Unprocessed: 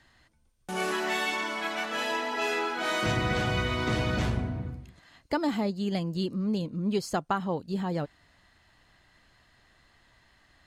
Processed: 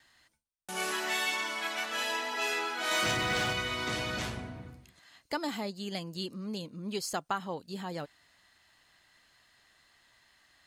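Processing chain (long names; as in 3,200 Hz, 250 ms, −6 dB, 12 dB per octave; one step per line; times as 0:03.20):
0:02.91–0:03.53: leveller curve on the samples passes 1
spectral tilt +2.5 dB per octave
noise gate with hold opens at −57 dBFS
level −4 dB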